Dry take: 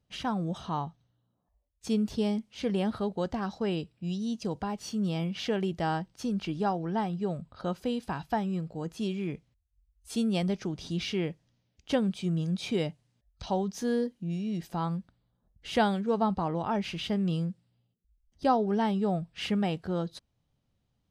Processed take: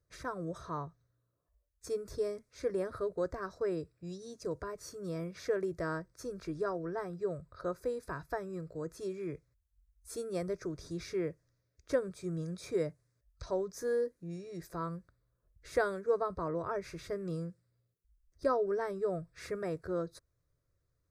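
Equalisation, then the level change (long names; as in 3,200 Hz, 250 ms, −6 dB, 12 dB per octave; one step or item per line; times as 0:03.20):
phaser with its sweep stopped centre 810 Hz, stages 6
dynamic equaliser 3,600 Hz, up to −5 dB, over −55 dBFS, Q 0.78
0.0 dB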